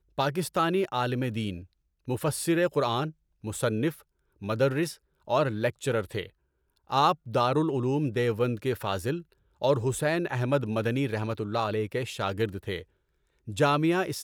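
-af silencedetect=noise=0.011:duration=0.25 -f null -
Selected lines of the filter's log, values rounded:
silence_start: 1.63
silence_end: 2.08 | silence_duration: 0.45
silence_start: 3.10
silence_end: 3.44 | silence_duration: 0.34
silence_start: 3.94
silence_end: 4.42 | silence_duration: 0.48
silence_start: 4.94
silence_end: 5.28 | silence_duration: 0.34
silence_start: 6.26
silence_end: 6.90 | silence_duration: 0.65
silence_start: 9.21
silence_end: 9.62 | silence_duration: 0.41
silence_start: 12.82
silence_end: 13.48 | silence_duration: 0.65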